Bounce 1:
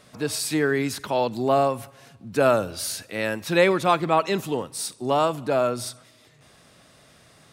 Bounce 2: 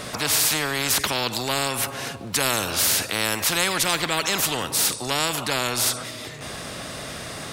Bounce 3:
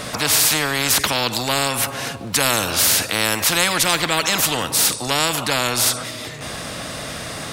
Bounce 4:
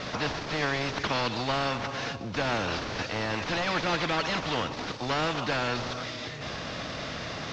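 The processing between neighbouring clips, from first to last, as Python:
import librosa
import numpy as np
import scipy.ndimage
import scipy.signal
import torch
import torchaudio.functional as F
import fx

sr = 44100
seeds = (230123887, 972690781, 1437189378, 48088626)

y1 = fx.spectral_comp(x, sr, ratio=4.0)
y2 = fx.notch(y1, sr, hz=390.0, q=12.0)
y2 = y2 * librosa.db_to_amplitude(4.5)
y3 = fx.cvsd(y2, sr, bps=32000)
y3 = y3 * librosa.db_to_amplitude(-5.0)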